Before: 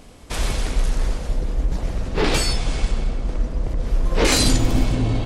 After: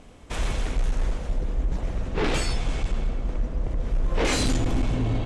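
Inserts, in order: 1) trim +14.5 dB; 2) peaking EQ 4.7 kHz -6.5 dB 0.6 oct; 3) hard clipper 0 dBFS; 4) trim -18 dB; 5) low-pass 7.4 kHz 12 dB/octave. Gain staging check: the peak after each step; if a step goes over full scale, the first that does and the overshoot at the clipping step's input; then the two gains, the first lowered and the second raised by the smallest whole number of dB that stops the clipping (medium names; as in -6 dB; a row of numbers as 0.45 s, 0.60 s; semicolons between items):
+10.0 dBFS, +9.5 dBFS, 0.0 dBFS, -18.0 dBFS, -17.0 dBFS; step 1, 9.5 dB; step 1 +4.5 dB, step 4 -8 dB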